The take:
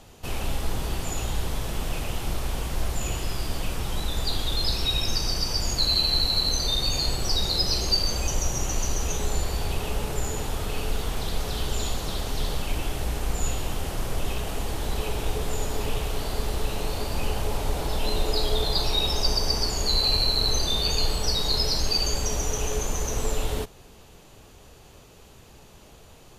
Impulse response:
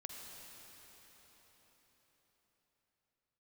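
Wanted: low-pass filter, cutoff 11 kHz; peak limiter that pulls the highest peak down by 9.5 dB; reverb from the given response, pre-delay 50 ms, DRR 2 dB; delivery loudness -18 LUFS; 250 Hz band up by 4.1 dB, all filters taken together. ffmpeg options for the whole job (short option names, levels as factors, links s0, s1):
-filter_complex "[0:a]lowpass=11000,equalizer=f=250:t=o:g=5.5,alimiter=limit=0.119:level=0:latency=1,asplit=2[s0][s1];[1:a]atrim=start_sample=2205,adelay=50[s2];[s1][s2]afir=irnorm=-1:irlink=0,volume=1.12[s3];[s0][s3]amix=inputs=2:normalize=0,volume=2.99"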